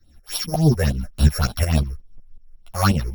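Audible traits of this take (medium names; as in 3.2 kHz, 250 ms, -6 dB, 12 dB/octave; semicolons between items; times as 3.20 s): a buzz of ramps at a fixed pitch in blocks of 8 samples; phasing stages 6, 3.5 Hz, lowest notch 220–1900 Hz; tremolo saw up 5.5 Hz, depth 75%; a shimmering, thickened sound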